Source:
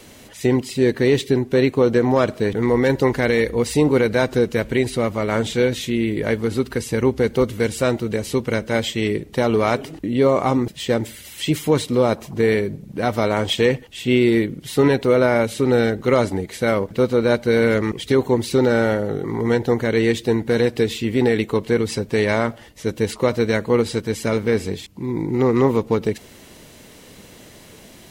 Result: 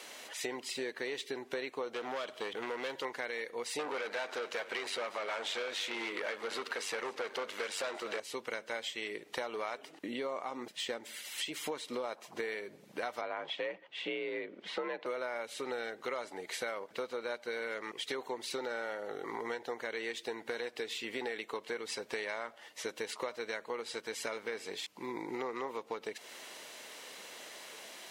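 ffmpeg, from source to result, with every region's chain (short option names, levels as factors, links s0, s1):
-filter_complex "[0:a]asettb=1/sr,asplit=3[s0][s1][s2];[s0]atrim=end=1.944[s3];[s1]atrim=start=1.94:end=3.05,asetpts=PTS-STARTPTS,afade=t=in:d=0.004:c=qsin,afade=t=out:st=1.106:d=0.004:c=qsin,equalizer=f=3200:t=o:w=0.28:g=11.5,bandreject=f=50:t=h:w=6,bandreject=f=100:t=h:w=6,bandreject=f=150:t=h:w=6,asoftclip=type=hard:threshold=0.178[s4];[s2]atrim=start=3.046[s5];[s3][s4]acrossfade=d=0.004:c1=hsin:c2=qsin[s6];[s6][s5]acrossfade=d=0.004:c1=qsin:c2=hsin,asettb=1/sr,asplit=3[s7][s8][s9];[s7]atrim=end=3.794[s10];[s8]atrim=start=3.79:end=8.2,asetpts=PTS-STARTPTS,afade=t=in:d=0.004:c=qsin,afade=t=out:st=4.406:d=0.004:c=qsin,tremolo=f=97:d=0.621,asplit=2[s11][s12];[s12]highpass=f=720:p=1,volume=17.8,asoftclip=type=tanh:threshold=0.473[s13];[s11][s13]amix=inputs=2:normalize=0,lowpass=f=3200:p=1,volume=0.501,aecho=1:1:232:0.119,atrim=end_sample=194481[s14];[s9]atrim=start=8.196[s15];[s10][s14]acrossfade=d=0.004:c1=hsin:c2=qsin[s16];[s16][s15]acrossfade=d=0.004:c1=qsin:c2=hsin,asettb=1/sr,asplit=3[s17][s18][s19];[s17]atrim=end=9.834[s20];[s18]atrim=start=9.83:end=12.04,asetpts=PTS-STARTPTS,afade=t=in:d=0.004:c=qsin,afade=t=out:st=2.206:d=0.004:c=qsin,tremolo=f=3.8:d=0.32,equalizer=f=220:t=o:w=0.93:g=4.5[s21];[s19]atrim=start=12.036[s22];[s20][s21]acrossfade=d=0.004:c1=hsin:c2=qsin[s23];[s23][s22]acrossfade=d=0.004:c1=qsin:c2=hsin,asettb=1/sr,asplit=3[s24][s25][s26];[s24]atrim=end=13.214[s27];[s25]atrim=start=13.21:end=15.06,asetpts=PTS-STARTPTS,afade=t=in:d=0.004:c=qsin,afade=t=out:st=1.846:d=0.004:c=qsin,lowpass=2500,afreqshift=56[s28];[s26]atrim=start=15.056[s29];[s27][s28]acrossfade=d=0.004:c1=hsin:c2=qsin[s30];[s30][s29]acrossfade=d=0.004:c1=qsin:c2=hsin,highpass=700,highshelf=f=10000:g=-10,acompressor=threshold=0.0158:ratio=6"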